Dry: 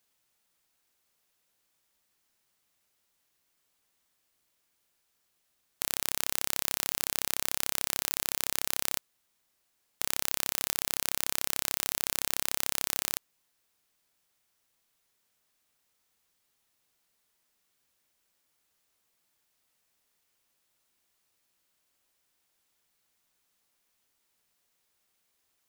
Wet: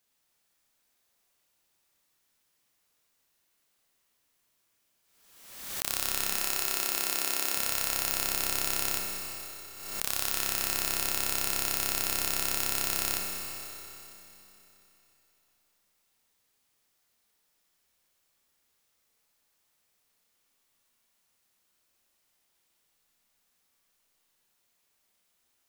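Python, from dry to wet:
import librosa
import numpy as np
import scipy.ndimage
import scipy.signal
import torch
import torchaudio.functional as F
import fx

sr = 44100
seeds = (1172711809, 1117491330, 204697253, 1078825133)

y = fx.highpass(x, sr, hz=220.0, slope=24, at=(6.27, 7.56))
y = fx.rev_schroeder(y, sr, rt60_s=3.3, comb_ms=27, drr_db=-1.0)
y = fx.pre_swell(y, sr, db_per_s=52.0)
y = y * librosa.db_to_amplitude(-2.0)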